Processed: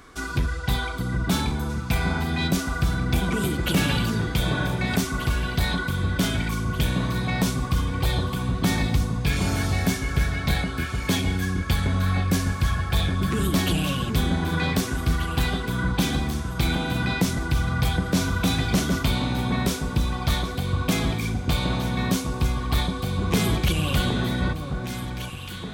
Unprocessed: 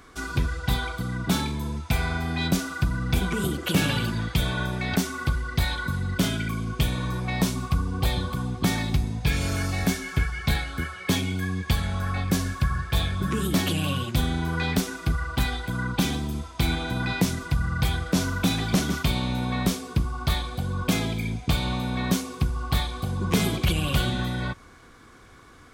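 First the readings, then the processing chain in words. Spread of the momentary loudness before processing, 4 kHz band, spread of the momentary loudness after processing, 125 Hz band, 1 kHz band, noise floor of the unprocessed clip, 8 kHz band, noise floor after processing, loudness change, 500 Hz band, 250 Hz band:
4 LU, +1.5 dB, 4 LU, +2.0 dB, +2.0 dB, -49 dBFS, +1.5 dB, -32 dBFS, +2.0 dB, +2.5 dB, +2.0 dB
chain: in parallel at -4 dB: hard clip -22.5 dBFS, distortion -10 dB; on the sum: echo with dull and thin repeats by turns 0.767 s, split 1400 Hz, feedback 67%, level -6 dB; gain -2.5 dB

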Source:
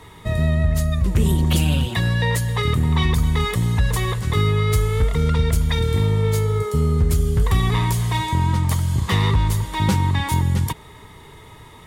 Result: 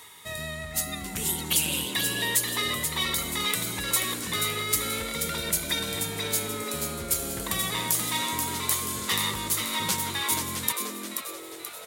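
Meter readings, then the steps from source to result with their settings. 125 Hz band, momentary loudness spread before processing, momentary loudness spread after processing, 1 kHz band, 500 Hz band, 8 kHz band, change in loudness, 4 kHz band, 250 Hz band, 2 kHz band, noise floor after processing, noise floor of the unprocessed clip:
-22.0 dB, 3 LU, 7 LU, -6.5 dB, -10.0 dB, +7.0 dB, -6.5 dB, +1.5 dB, -11.5 dB, -2.0 dB, -41 dBFS, -44 dBFS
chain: frequency-shifting echo 0.482 s, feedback 46%, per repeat +120 Hz, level -6 dB; reverse; upward compressor, threshold -30 dBFS; reverse; tilt +4.5 dB/oct; gain -8 dB

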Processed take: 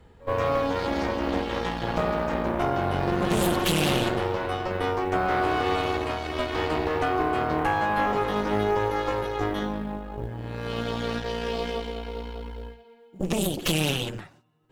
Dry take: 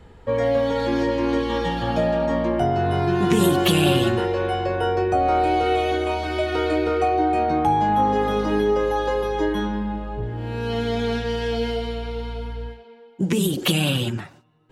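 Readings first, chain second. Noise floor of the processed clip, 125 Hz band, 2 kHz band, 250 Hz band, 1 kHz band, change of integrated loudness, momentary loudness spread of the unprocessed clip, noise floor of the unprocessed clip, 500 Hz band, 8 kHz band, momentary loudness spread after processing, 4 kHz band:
-52 dBFS, -5.5 dB, -1.0 dB, -6.0 dB, -4.5 dB, -4.5 dB, 10 LU, -47 dBFS, -5.5 dB, -2.0 dB, 11 LU, -3.5 dB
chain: pre-echo 67 ms -19.5 dB; added harmonics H 5 -25 dB, 6 -9 dB, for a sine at -5.5 dBFS; companded quantiser 8-bit; gain -8.5 dB

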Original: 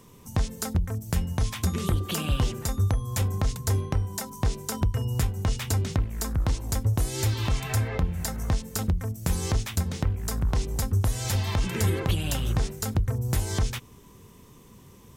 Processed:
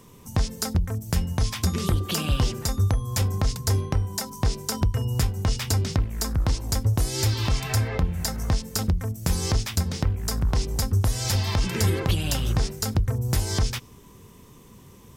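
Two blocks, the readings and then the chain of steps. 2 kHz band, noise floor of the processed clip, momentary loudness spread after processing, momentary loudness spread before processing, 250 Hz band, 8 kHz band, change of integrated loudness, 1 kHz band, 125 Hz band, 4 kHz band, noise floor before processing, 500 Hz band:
+2.0 dB, -49 dBFS, 3 LU, 3 LU, +2.0 dB, +3.0 dB, +2.5 dB, +2.0 dB, +2.0 dB, +5.5 dB, -51 dBFS, +2.0 dB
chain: dynamic EQ 5000 Hz, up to +7 dB, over -53 dBFS, Q 3; gain +2 dB

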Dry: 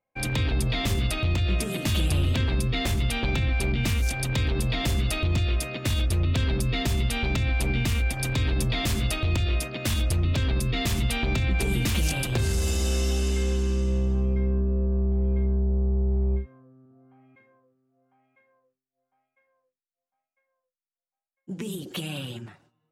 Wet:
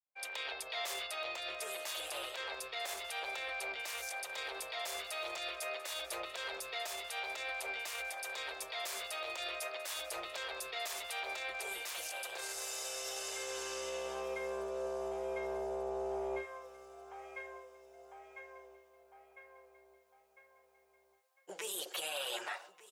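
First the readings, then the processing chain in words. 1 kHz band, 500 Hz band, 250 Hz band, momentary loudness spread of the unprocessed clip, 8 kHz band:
-4.5 dB, -7.0 dB, -25.0 dB, 3 LU, -7.5 dB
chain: opening faded in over 3.58 s; inverse Chebyshev high-pass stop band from 270 Hz, stop band 40 dB; dynamic EQ 2900 Hz, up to -5 dB, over -48 dBFS, Q 1.4; reverse; compressor 6:1, threshold -47 dBFS, peak gain reduction 17.5 dB; reverse; limiter -42 dBFS, peak gain reduction 10 dB; vocal rider within 4 dB 2 s; on a send: feedback echo 1.191 s, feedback 53%, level -18 dB; on the sum: gain +11 dB

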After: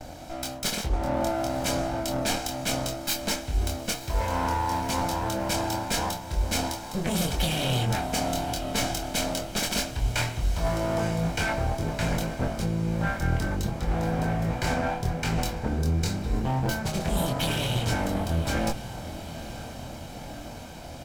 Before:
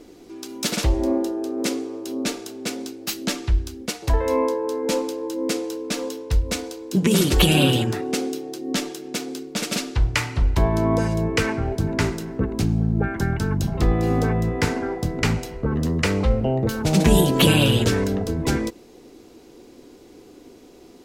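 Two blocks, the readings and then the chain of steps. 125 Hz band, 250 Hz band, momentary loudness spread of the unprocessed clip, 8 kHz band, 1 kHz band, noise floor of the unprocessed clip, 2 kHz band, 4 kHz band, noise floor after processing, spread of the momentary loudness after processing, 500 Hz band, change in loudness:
-5.5 dB, -8.0 dB, 12 LU, -2.0 dB, +1.0 dB, -47 dBFS, -3.5 dB, -4.5 dB, -40 dBFS, 9 LU, -6.5 dB, -5.5 dB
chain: minimum comb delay 1.3 ms; gate with hold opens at -47 dBFS; spectral gain 15.68–16.46, 480–3500 Hz -10 dB; reverse; compressor 10:1, threshold -31 dBFS, peak gain reduction 19 dB; reverse; doubler 24 ms -4 dB; on a send: diffused feedback echo 0.96 s, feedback 66%, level -14 dB; on the sum: gain +6 dB

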